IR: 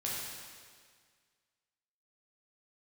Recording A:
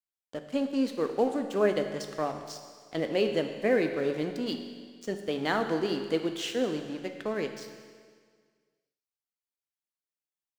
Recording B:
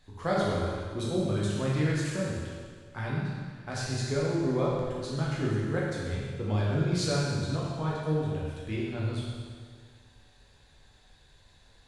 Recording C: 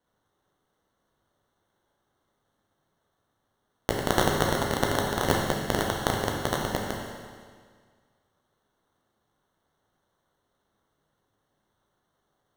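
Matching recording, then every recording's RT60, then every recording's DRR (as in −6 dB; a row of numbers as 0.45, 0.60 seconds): B; 1.8, 1.8, 1.8 seconds; 5.5, −6.0, −1.5 decibels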